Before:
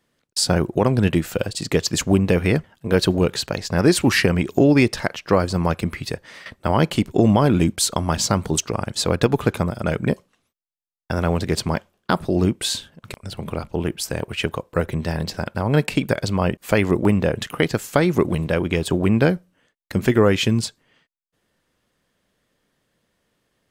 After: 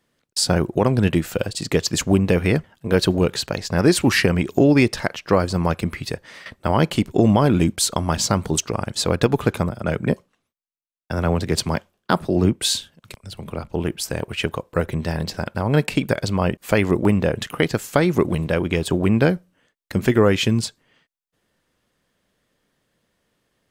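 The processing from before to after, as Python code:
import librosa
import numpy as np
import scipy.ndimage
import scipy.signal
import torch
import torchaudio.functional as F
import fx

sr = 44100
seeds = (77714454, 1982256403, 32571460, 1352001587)

y = fx.band_widen(x, sr, depth_pct=40, at=(9.69, 13.7))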